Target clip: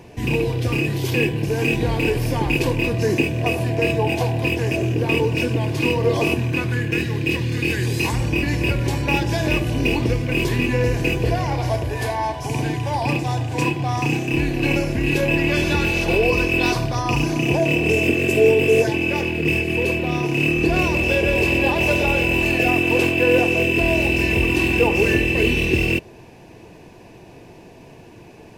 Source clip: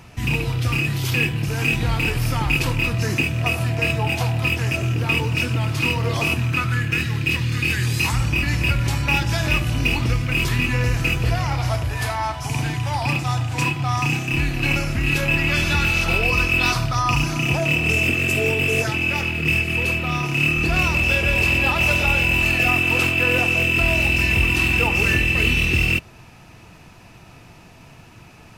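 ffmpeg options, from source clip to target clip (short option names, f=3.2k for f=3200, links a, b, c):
-af "asuperstop=centerf=1300:order=4:qfactor=5.6,equalizer=f=410:w=0.95:g=14,volume=-3dB"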